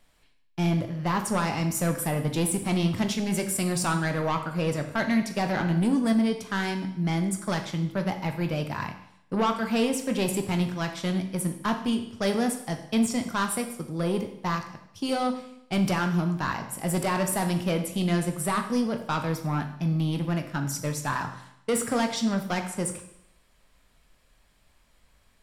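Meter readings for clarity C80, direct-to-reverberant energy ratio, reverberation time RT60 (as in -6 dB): 11.5 dB, 5.5 dB, 0.75 s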